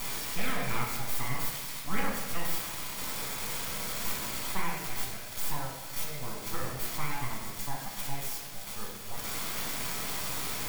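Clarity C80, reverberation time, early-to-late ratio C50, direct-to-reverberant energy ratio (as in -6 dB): 4.5 dB, 1.3 s, 2.0 dB, -3.5 dB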